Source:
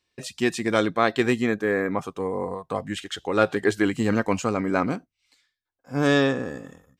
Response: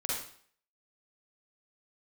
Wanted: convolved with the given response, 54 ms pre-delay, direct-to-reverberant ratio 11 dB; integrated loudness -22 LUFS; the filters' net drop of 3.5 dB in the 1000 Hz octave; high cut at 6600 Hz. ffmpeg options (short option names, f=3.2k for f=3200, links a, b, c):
-filter_complex "[0:a]lowpass=6.6k,equalizer=f=1k:t=o:g=-5,asplit=2[a][b];[1:a]atrim=start_sample=2205,adelay=54[c];[b][c]afir=irnorm=-1:irlink=0,volume=-16dB[d];[a][d]amix=inputs=2:normalize=0,volume=3dB"